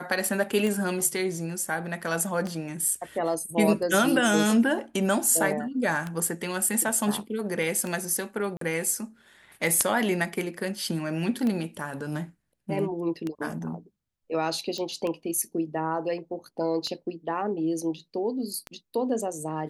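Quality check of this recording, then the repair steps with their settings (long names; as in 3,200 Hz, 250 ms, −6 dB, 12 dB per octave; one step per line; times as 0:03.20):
scratch tick 33 1/3 rpm −18 dBFS
0:08.57–0:08.61: drop-out 43 ms
0:14.78: click −21 dBFS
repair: click removal
repair the gap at 0:08.57, 43 ms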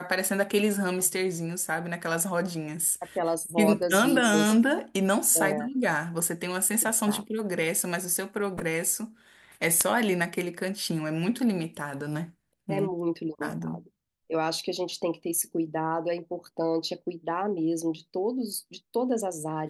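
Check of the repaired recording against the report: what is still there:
none of them is left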